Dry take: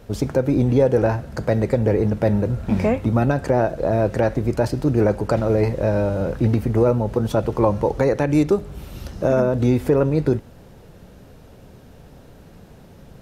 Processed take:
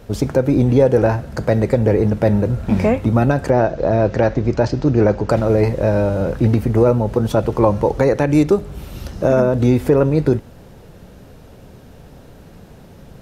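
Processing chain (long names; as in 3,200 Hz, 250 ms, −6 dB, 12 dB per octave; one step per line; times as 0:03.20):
0:03.50–0:05.29: Butterworth low-pass 6,600 Hz 36 dB per octave
level +3.5 dB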